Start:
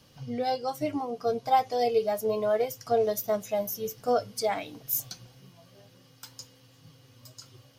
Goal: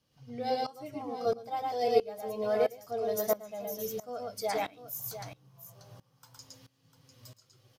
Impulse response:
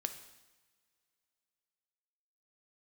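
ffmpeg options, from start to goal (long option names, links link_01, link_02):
-filter_complex "[0:a]asettb=1/sr,asplit=3[link_01][link_02][link_03];[link_01]atrim=end=4.784[link_04];[link_02]atrim=start=4.78:end=6.38,asetpts=PTS-STARTPTS,afade=type=in:duration=0.004:curve=qsin,afade=type=out:start_time=1.596:duration=0.004:curve=qsin,equalizer=frequency=125:width_type=o:width=1:gain=9,equalizer=frequency=250:width_type=o:width=1:gain=-7,equalizer=frequency=1000:width_type=o:width=1:gain=9,equalizer=frequency=2000:width_type=o:width=1:gain=-4,equalizer=frequency=4000:width_type=o:width=1:gain=-3[link_05];[link_03]atrim=start=6.376[link_06];[link_04][link_05]acrossfade=duration=0.004:curve1=hsin:curve2=qsin[link_07];[link_07][link_06]acrossfade=duration=0.004:curve1=qsin:curve2=hsin,asplit=2[link_08][link_09];[link_09]aecho=0:1:113|699:0.668|0.251[link_10];[link_08][link_10]amix=inputs=2:normalize=0,aeval=exprs='val(0)*pow(10,-19*if(lt(mod(-1.5*n/s,1),2*abs(-1.5)/1000),1-mod(-1.5*n/s,1)/(2*abs(-1.5)/1000),(mod(-1.5*n/s,1)-2*abs(-1.5)/1000)/(1-2*abs(-1.5)/1000))/20)':channel_layout=same"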